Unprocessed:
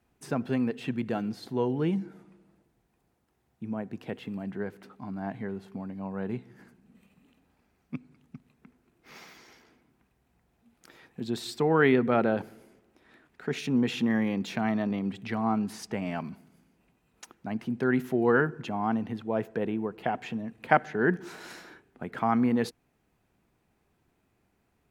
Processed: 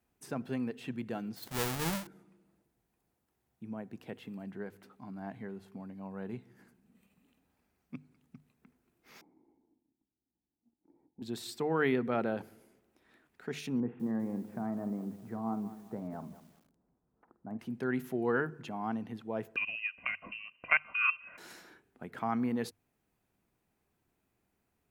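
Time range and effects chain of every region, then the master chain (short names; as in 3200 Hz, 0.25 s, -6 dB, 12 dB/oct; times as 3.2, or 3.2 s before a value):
1.36–2.07 half-waves squared off + bell 300 Hz -6.5 dB 1.7 oct
9.21–11.22 sample leveller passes 2 + vocal tract filter u
13.8–17.59 Bessel low-pass 930 Hz, order 6 + doubler 49 ms -13.5 dB + lo-fi delay 0.197 s, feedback 35%, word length 8-bit, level -14 dB
19.56–21.38 comb 2.2 ms, depth 61% + transient shaper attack +2 dB, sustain -3 dB + inverted band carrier 2900 Hz
whole clip: high shelf 8400 Hz +9 dB; notches 50/100/150 Hz; gain -7.5 dB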